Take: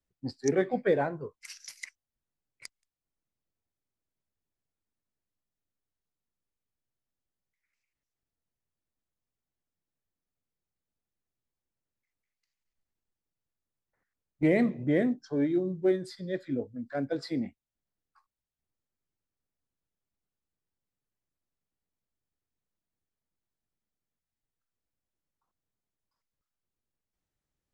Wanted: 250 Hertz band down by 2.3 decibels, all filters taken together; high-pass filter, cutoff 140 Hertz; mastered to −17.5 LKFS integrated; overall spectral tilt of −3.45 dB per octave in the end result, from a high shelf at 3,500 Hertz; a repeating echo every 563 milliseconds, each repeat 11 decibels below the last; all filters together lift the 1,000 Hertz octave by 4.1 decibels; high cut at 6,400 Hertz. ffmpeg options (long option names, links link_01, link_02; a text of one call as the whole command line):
ffmpeg -i in.wav -af "highpass=140,lowpass=6400,equalizer=frequency=250:width_type=o:gain=-3,equalizer=frequency=1000:width_type=o:gain=7,highshelf=frequency=3500:gain=-4,aecho=1:1:563|1126|1689:0.282|0.0789|0.0221,volume=13dB" out.wav